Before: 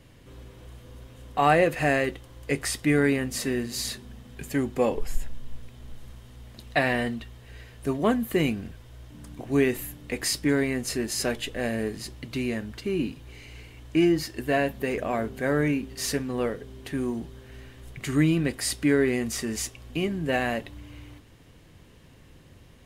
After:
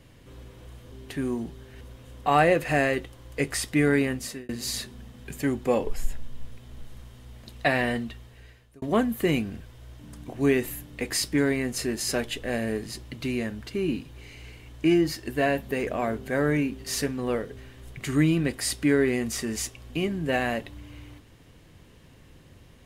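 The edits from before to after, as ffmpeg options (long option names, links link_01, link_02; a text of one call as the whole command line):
ffmpeg -i in.wav -filter_complex "[0:a]asplit=6[link_01][link_02][link_03][link_04][link_05][link_06];[link_01]atrim=end=0.922[link_07];[link_02]atrim=start=16.678:end=17.572[link_08];[link_03]atrim=start=0.918:end=3.6,asetpts=PTS-STARTPTS,afade=type=out:start_time=2.312:duration=0.37[link_09];[link_04]atrim=start=3.6:end=7.93,asetpts=PTS-STARTPTS,afade=type=in:duration=0.004:curve=hsin,afade=type=out:start_time=3.67:duration=0.66[link_10];[link_05]atrim=start=7.93:end=16.682,asetpts=PTS-STARTPTS,afade=type=in:duration=0.004:curve=hsin[link_11];[link_06]atrim=start=17.568[link_12];[link_07][link_08]acrossfade=duration=0.004:curve1=hsin:curve2=hsin[link_13];[link_09][link_10][link_11]concat=n=3:v=0:a=1[link_14];[link_13][link_14]acrossfade=duration=0.004:curve1=hsin:curve2=hsin[link_15];[link_15][link_12]acrossfade=duration=0.004:curve1=hsin:curve2=hsin" out.wav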